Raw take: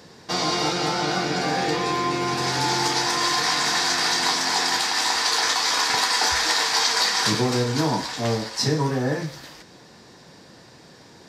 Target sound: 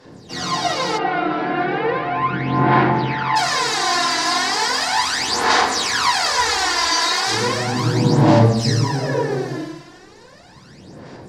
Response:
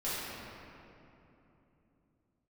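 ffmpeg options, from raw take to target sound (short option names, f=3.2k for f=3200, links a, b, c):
-filter_complex "[1:a]atrim=start_sample=2205,afade=t=out:st=0.35:d=0.01,atrim=end_sample=15876,asetrate=24696,aresample=44100[a];[0:a][a]afir=irnorm=-1:irlink=0,aphaser=in_gain=1:out_gain=1:delay=3:decay=0.68:speed=0.36:type=sinusoidal,asplit=3[b][c][d];[b]afade=t=out:st=0.97:d=0.02[e];[c]lowpass=f=2.8k:w=0.5412,lowpass=f=2.8k:w=1.3066,afade=t=in:st=0.97:d=0.02,afade=t=out:st=3.35:d=0.02[f];[d]afade=t=in:st=3.35:d=0.02[g];[e][f][g]amix=inputs=3:normalize=0,volume=-8.5dB"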